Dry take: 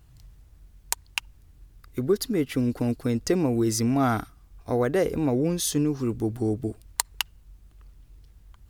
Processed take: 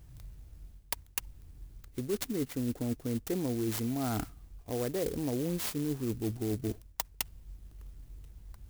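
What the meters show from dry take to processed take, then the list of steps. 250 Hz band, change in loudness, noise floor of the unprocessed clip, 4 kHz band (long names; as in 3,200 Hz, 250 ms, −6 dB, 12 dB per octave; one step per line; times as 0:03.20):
−8.5 dB, −8.5 dB, −55 dBFS, −9.5 dB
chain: parametric band 1,200 Hz −6 dB 1.1 octaves
reversed playback
downward compressor 5 to 1, threshold −33 dBFS, peak gain reduction 14 dB
reversed playback
converter with an unsteady clock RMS 0.085 ms
level +2 dB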